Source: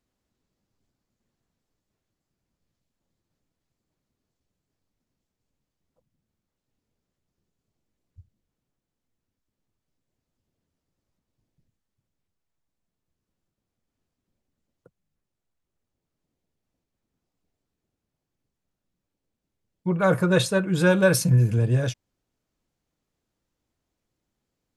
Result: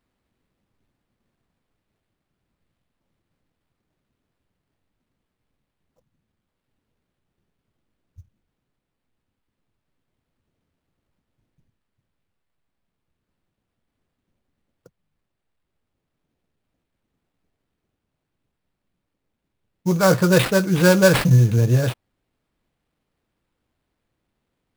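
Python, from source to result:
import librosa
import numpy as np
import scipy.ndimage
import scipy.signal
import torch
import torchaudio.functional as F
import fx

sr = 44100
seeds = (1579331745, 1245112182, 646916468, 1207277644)

y = fx.sample_hold(x, sr, seeds[0], rate_hz=6300.0, jitter_pct=20)
y = y * 10.0 ** (4.5 / 20.0)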